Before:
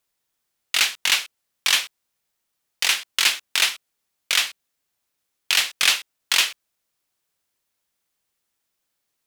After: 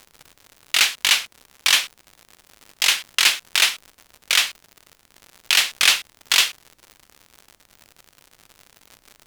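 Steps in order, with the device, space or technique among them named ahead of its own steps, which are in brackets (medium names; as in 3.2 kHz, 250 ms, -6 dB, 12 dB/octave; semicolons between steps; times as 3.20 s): warped LP (warped record 33 1/3 rpm, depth 100 cents; crackle 120 per s -33 dBFS; pink noise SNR 41 dB); trim +2.5 dB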